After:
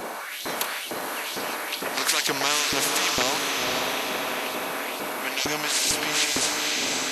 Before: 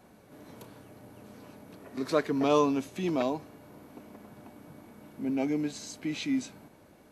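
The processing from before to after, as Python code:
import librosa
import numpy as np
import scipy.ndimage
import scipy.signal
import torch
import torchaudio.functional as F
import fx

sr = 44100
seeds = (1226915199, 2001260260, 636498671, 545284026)

y = fx.filter_lfo_highpass(x, sr, shape='saw_up', hz=2.2, low_hz=370.0, high_hz=4300.0, q=2.5)
y = fx.echo_diffused(y, sr, ms=537, feedback_pct=41, wet_db=-9)
y = fx.spectral_comp(y, sr, ratio=4.0)
y = y * 10.0 ** (6.5 / 20.0)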